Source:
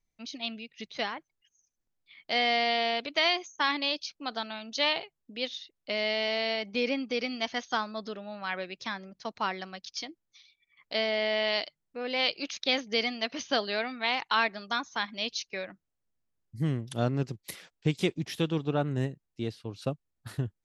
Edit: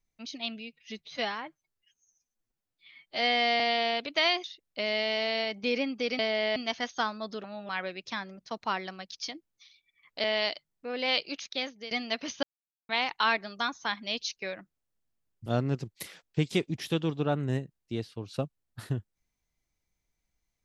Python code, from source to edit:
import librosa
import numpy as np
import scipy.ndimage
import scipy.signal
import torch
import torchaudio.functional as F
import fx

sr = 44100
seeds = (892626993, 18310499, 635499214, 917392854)

y = fx.edit(x, sr, fx.stretch_span(start_s=0.6, length_s=2.0, factor=1.5),
    fx.cut(start_s=3.44, length_s=2.11),
    fx.reverse_span(start_s=8.18, length_s=0.25),
    fx.move(start_s=10.98, length_s=0.37, to_s=7.3),
    fx.fade_out_to(start_s=12.29, length_s=0.73, floor_db=-16.5),
    fx.silence(start_s=13.54, length_s=0.46),
    fx.cut(start_s=16.57, length_s=0.37), tone=tone)